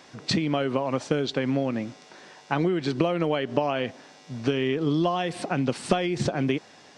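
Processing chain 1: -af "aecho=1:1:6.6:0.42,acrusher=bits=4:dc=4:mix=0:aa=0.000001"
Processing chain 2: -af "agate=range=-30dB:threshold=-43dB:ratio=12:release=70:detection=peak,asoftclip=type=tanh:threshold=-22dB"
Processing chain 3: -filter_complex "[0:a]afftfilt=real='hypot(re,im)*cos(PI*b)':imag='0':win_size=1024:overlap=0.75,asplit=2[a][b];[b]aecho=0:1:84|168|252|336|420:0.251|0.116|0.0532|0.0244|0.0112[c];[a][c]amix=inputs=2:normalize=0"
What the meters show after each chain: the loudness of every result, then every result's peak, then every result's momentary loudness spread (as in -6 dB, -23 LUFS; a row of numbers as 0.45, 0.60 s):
-26.5, -30.0, -29.5 LUFS; -5.5, -22.0, -7.0 dBFS; 10, 7, 11 LU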